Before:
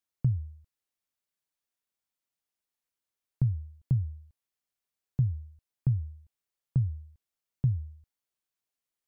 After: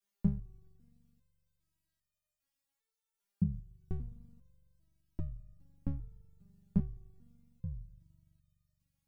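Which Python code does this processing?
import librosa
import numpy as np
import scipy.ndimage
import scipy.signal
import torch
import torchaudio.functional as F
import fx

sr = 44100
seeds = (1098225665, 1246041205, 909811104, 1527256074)

y = x * np.sin(2.0 * np.pi * 36.0 * np.arange(len(x)) / sr)
y = fx.rev_spring(y, sr, rt60_s=2.6, pass_ms=(42,), chirp_ms=50, drr_db=17.5)
y = fx.resonator_held(y, sr, hz=2.5, low_hz=200.0, high_hz=610.0)
y = y * 10.0 ** (17.5 / 20.0)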